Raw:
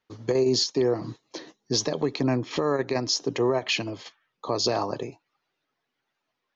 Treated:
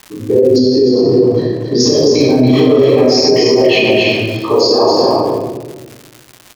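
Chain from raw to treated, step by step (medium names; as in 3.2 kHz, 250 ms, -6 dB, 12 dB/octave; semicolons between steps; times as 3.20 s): resonances exaggerated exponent 2; high-pass 59 Hz; loudspeakers at several distances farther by 11 m -4 dB, 96 m -3 dB; simulated room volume 810 m³, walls mixed, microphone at 9.8 m; crackle 240 per s -24 dBFS; peak limiter -2.5 dBFS, peak gain reduction 9 dB; 0.58–1.80 s: low-pass 2 kHz 6 dB/octave; trim +1 dB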